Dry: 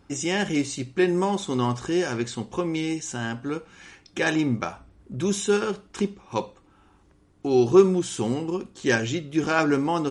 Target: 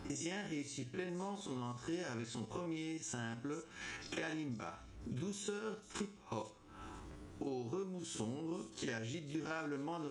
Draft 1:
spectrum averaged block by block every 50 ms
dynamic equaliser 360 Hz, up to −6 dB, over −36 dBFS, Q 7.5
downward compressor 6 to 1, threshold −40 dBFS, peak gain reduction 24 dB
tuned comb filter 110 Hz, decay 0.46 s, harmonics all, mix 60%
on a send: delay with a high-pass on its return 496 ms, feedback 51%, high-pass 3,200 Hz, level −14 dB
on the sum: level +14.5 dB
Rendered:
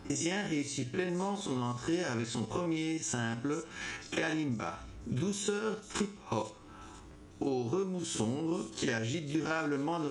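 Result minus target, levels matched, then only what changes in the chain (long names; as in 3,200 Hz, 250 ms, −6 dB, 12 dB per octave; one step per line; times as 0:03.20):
downward compressor: peak gain reduction −9 dB
change: downward compressor 6 to 1, threshold −50.5 dBFS, peak gain reduction 32.5 dB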